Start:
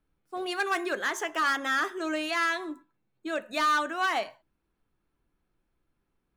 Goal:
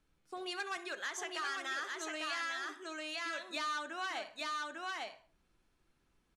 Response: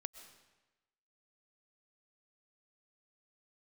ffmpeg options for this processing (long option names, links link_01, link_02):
-filter_complex "[0:a]asettb=1/sr,asplit=3[link_01][link_02][link_03];[link_01]atrim=end=0.774[link_04];[link_02]atrim=start=0.77:end=3.56,asetpts=PTS-STARTPTS,afade=type=in:duration=0.004:curve=qsin,afade=type=out:start_time=2.786:duration=0.004:curve=qsin,highpass=frequency=470:poles=1[link_05];[link_03]atrim=start=3.556[link_06];[link_04][link_05]acrossfade=duration=0.004:curve1=hsin:curve2=qsin[link_07];[link_07][link_06]acrossfade=duration=0.004:curve1=qsin:curve2=hsin,aecho=1:1:849:0.631,acompressor=threshold=-47dB:ratio=2.5,lowpass=7700,highshelf=frequency=2500:gain=10,asplit=2[link_08][link_09];[link_09]adelay=65,lowpass=frequency=3400:poles=1,volume=-14.5dB,asplit=2[link_10][link_11];[link_11]adelay=65,lowpass=frequency=3400:poles=1,volume=0.38,asplit=2[link_12][link_13];[link_13]adelay=65,lowpass=frequency=3400:poles=1,volume=0.38,asplit=2[link_14][link_15];[link_15]adelay=65,lowpass=frequency=3400:poles=1,volume=0.38[link_16];[link_08][link_10][link_12][link_14][link_16]amix=inputs=5:normalize=0"